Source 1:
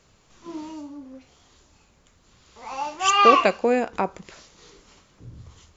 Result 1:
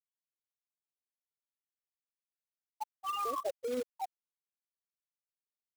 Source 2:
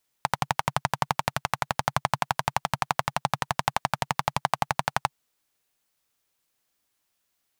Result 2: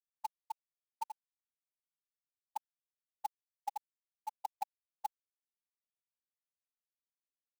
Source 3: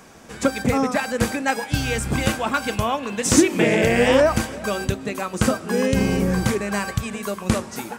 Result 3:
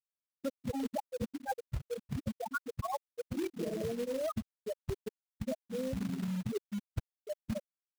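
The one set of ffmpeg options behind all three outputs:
ffmpeg -i in.wav -af "afftfilt=real='re*gte(hypot(re,im),0.562)':imag='im*gte(hypot(re,im),0.562)':win_size=1024:overlap=0.75,alimiter=limit=-13dB:level=0:latency=1:release=192,areverse,acompressor=threshold=-32dB:ratio=8,areverse,acrusher=bits=3:mode=log:mix=0:aa=0.000001,volume=-1.5dB" out.wav

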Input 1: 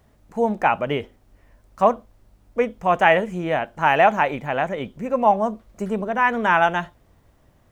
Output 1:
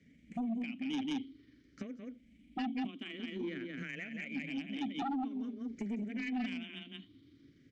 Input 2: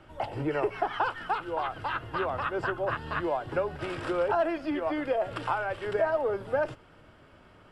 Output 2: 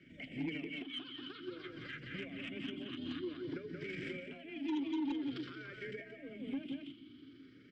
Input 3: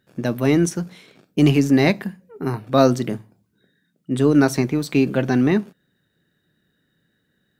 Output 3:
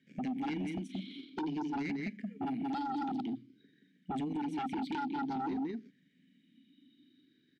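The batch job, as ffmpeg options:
ffmpeg -i in.wav -filter_complex "[0:a]afftfilt=real='re*pow(10,12/40*sin(2*PI*(0.54*log(max(b,1)*sr/1024/100)/log(2)-(0.51)*(pts-256)/sr)))':imag='im*pow(10,12/40*sin(2*PI*(0.54*log(max(b,1)*sr/1024/100)/log(2)-(0.51)*(pts-256)/sr)))':win_size=1024:overlap=0.75,tremolo=f=24:d=0.333,afreqshift=15,asplit=2[link_01][link_02];[link_02]aecho=0:1:177:0.501[link_03];[link_01][link_03]amix=inputs=2:normalize=0,acompressor=threshold=-30dB:ratio=8,firequalizer=gain_entry='entry(220,0);entry(600,-9);entry(4100,4)':delay=0.05:min_phase=1,acrusher=bits=11:mix=0:aa=0.000001,asplit=3[link_04][link_05][link_06];[link_04]bandpass=frequency=270:width_type=q:width=8,volume=0dB[link_07];[link_05]bandpass=frequency=2290:width_type=q:width=8,volume=-6dB[link_08];[link_06]bandpass=frequency=3010:width_type=q:width=8,volume=-9dB[link_09];[link_07][link_08][link_09]amix=inputs=3:normalize=0,highshelf=frequency=7100:gain=-9.5,aeval=exprs='0.0168*sin(PI/2*1.78*val(0)/0.0168)':channel_layout=same,volume=3.5dB" out.wav

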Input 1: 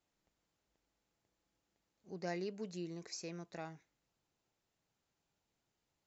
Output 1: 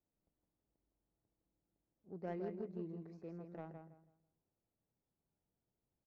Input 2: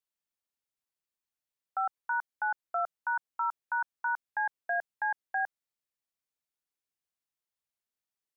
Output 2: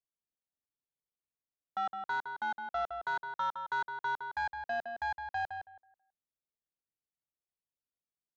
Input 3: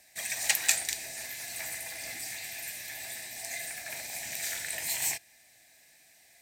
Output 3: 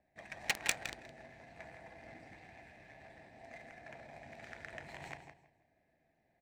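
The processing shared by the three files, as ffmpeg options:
ffmpeg -i in.wav -af "aecho=1:1:163|326|489|652:0.531|0.154|0.0446|0.0129,adynamicsmooth=sensitivity=1.5:basefreq=730,volume=-1.5dB" out.wav

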